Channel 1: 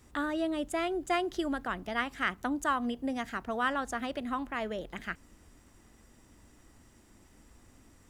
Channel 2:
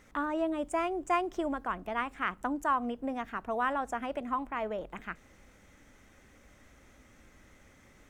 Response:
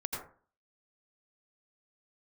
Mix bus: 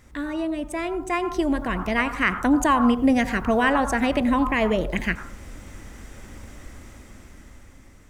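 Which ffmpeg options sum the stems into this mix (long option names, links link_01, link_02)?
-filter_complex "[0:a]alimiter=limit=-23dB:level=0:latency=1:release=475,lowshelf=frequency=120:gain=9.5,volume=1dB[link_01];[1:a]volume=-1.5dB,asplit=2[link_02][link_03];[link_03]volume=-10.5dB[link_04];[2:a]atrim=start_sample=2205[link_05];[link_04][link_05]afir=irnorm=-1:irlink=0[link_06];[link_01][link_02][link_06]amix=inputs=3:normalize=0,dynaudnorm=framelen=350:gausssize=9:maxgain=11dB"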